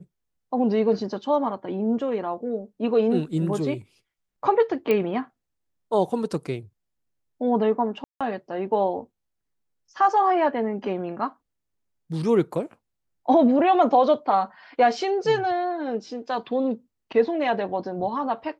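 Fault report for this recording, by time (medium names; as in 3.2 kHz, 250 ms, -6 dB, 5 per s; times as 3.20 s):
4.91 s: pop -12 dBFS
8.04–8.21 s: dropout 166 ms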